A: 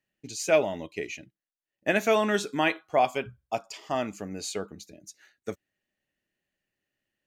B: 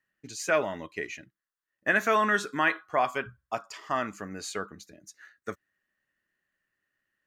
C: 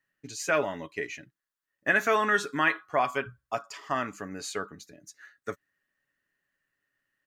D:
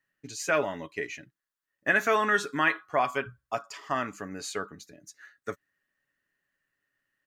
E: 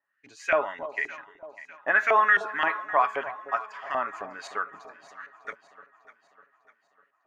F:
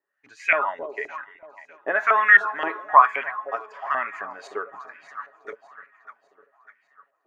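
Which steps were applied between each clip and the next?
band shelf 1400 Hz +11 dB 1.1 oct; in parallel at -3 dB: limiter -14.5 dBFS, peak gain reduction 8.5 dB; on the sum: gain -7.5 dB
comb 7.1 ms, depth 33%
nothing audible
LFO band-pass saw up 3.8 Hz 700–2400 Hz; echo with dull and thin repeats by turns 0.3 s, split 900 Hz, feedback 69%, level -12.5 dB; gain +8.5 dB
LFO bell 1.1 Hz 370–2300 Hz +18 dB; gain -4 dB

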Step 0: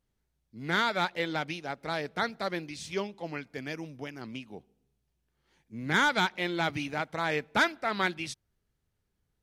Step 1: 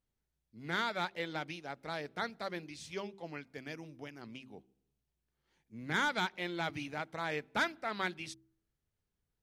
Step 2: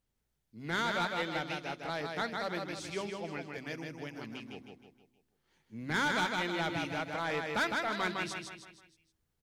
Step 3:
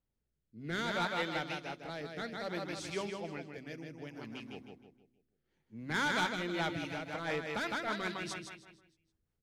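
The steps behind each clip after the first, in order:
de-hum 64.92 Hz, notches 6; gain -7 dB
feedback echo 0.157 s, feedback 44%, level -4.5 dB; soft clip -28 dBFS, distortion -15 dB; gain +3.5 dB
rotary speaker horn 0.6 Hz, later 5 Hz, at 6.05; mismatched tape noise reduction decoder only

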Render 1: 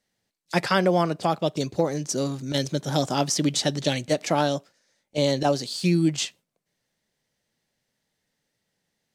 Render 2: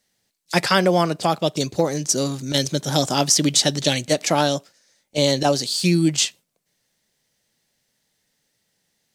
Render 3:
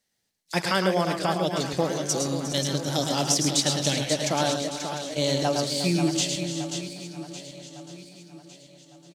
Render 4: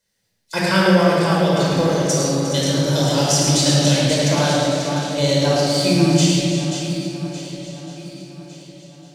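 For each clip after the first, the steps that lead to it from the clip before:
high shelf 3300 Hz +8 dB; gain +3 dB
regenerating reverse delay 0.578 s, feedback 60%, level -12 dB; tapped delay 0.108/0.129/0.357/0.536 s -6.5/-11/-13/-8 dB; gain -7 dB
shoebox room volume 2500 m³, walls mixed, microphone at 5 m

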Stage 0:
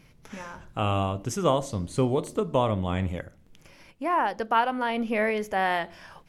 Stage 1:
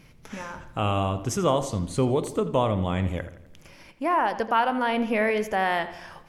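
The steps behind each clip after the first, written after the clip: in parallel at -1 dB: limiter -19.5 dBFS, peak gain reduction 10 dB; on the sum: darkening echo 84 ms, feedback 53%, low-pass 4600 Hz, level -14 dB; gain -2.5 dB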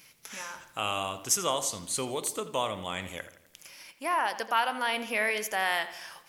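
tilt +4.5 dB/oct; gain -4.5 dB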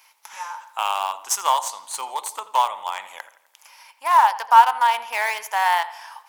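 in parallel at -6.5 dB: bit-crush 4-bit; on the sum: resonant high-pass 900 Hz, resonance Q 6.7; gain -1 dB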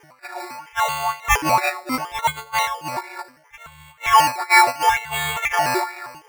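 frequency quantiser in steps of 4 st; decimation with a swept rate 11×, swing 60% 0.72 Hz; LFO bell 2.1 Hz 300–2400 Hz +13 dB; gain -7 dB

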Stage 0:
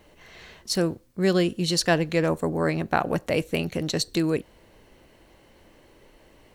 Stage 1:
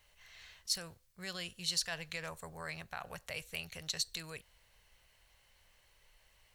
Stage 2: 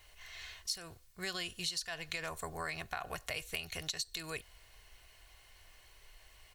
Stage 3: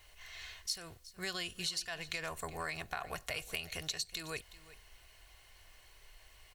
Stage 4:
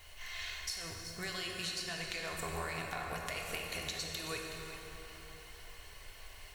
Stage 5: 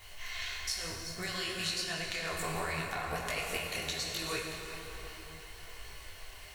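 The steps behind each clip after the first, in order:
limiter -15 dBFS, peak gain reduction 8.5 dB; passive tone stack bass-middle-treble 10-0-10; gain -4.5 dB
comb 2.8 ms, depth 43%; compressor 10:1, threshold -41 dBFS, peak gain reduction 14 dB; gain +6.5 dB
echo 0.369 s -17.5 dB
compressor, threshold -43 dBFS, peak gain reduction 11 dB; plate-style reverb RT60 4 s, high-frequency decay 0.6×, DRR -1 dB; gain +4.5 dB
detuned doubles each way 41 cents; gain +7.5 dB

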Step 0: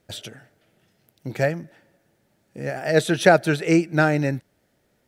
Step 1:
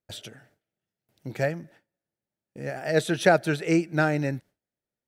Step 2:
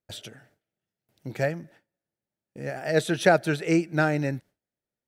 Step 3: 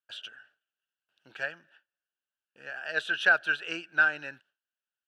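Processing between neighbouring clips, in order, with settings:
gate with hold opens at -43 dBFS; gain -4.5 dB
nothing audible
double band-pass 2100 Hz, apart 0.85 oct; gain +7.5 dB

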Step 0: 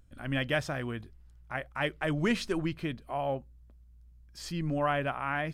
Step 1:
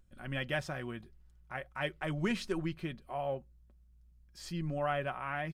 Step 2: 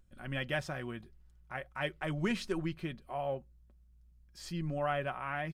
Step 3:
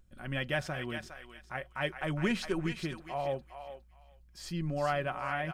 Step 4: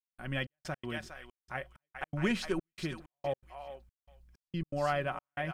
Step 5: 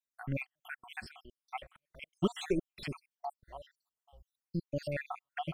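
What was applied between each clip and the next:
comb 5.4 ms, depth 41%; gain -5.5 dB
nothing audible
thinning echo 0.41 s, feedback 23%, high-pass 1100 Hz, level -5.5 dB; gain +2 dB
step gate "..xxx..x.xxxxx" 162 bpm -60 dB
random spectral dropouts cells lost 68%; gain +2.5 dB

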